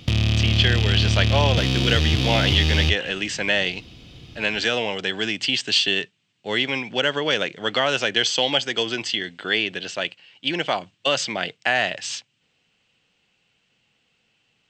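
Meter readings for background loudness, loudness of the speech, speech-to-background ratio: −20.5 LKFS, −22.5 LKFS, −2.0 dB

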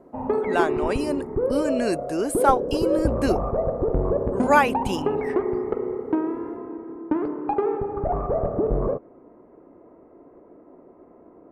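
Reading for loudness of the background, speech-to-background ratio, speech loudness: −26.0 LKFS, 1.0 dB, −25.0 LKFS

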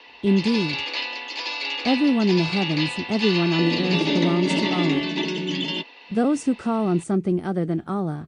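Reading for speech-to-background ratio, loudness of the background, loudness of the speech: 2.0 dB, −25.5 LKFS, −23.5 LKFS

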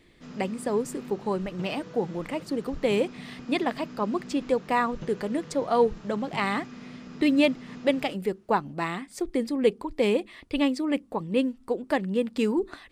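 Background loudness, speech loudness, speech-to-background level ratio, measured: −43.5 LKFS, −28.0 LKFS, 15.5 dB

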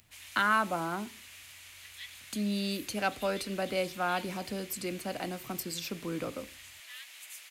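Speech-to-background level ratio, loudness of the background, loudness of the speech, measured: 13.5 dB, −47.0 LKFS, −33.5 LKFS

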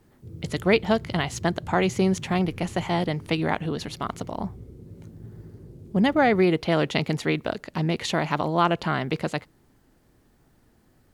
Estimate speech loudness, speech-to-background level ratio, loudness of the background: −25.0 LKFS, 17.5 dB, −42.5 LKFS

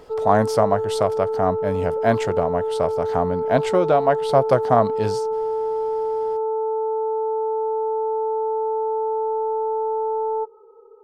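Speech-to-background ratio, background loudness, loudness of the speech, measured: 2.5 dB, −24.0 LKFS, −21.5 LKFS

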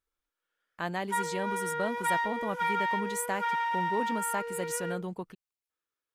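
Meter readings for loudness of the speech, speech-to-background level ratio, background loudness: −35.5 LKFS, −3.5 dB, −32.0 LKFS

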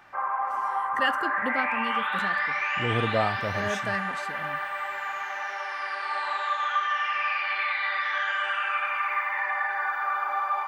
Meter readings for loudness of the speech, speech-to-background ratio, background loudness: −31.0 LKFS, −3.5 dB, −27.5 LKFS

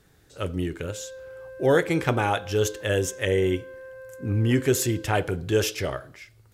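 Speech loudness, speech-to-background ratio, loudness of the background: −25.0 LKFS, 17.5 dB, −42.5 LKFS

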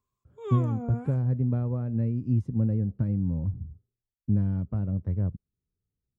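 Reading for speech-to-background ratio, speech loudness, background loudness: 10.0 dB, −28.0 LKFS, −38.0 LKFS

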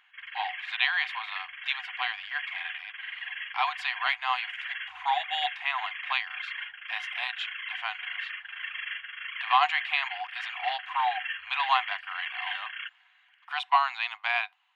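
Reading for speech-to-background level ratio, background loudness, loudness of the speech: 5.5 dB, −36.0 LKFS, −30.5 LKFS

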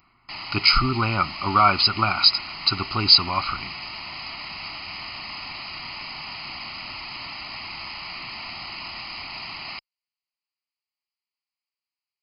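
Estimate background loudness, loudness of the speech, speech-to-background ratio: −33.0 LKFS, −19.0 LKFS, 14.0 dB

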